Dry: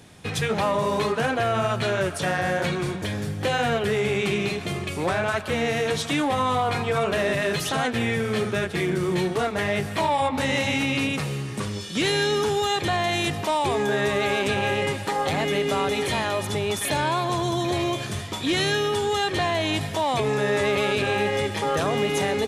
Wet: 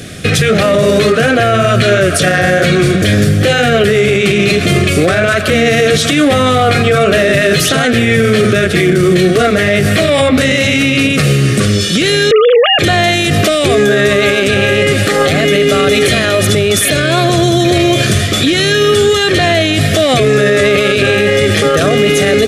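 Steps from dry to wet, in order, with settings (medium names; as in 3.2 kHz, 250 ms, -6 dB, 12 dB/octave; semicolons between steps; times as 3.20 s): 12.31–12.79 s: formants replaced by sine waves; Butterworth band-stop 920 Hz, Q 1.8; loudness maximiser +22.5 dB; trim -1 dB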